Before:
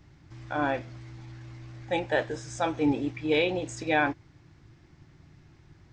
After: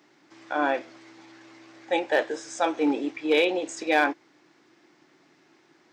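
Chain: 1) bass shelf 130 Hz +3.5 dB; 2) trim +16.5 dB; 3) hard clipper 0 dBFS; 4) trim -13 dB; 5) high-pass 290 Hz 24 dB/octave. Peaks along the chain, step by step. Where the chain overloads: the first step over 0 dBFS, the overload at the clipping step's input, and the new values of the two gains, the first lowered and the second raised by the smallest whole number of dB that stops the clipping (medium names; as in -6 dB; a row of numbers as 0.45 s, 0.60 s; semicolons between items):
-12.5 dBFS, +4.0 dBFS, 0.0 dBFS, -13.0 dBFS, -8.5 dBFS; step 2, 4.0 dB; step 2 +12.5 dB, step 4 -9 dB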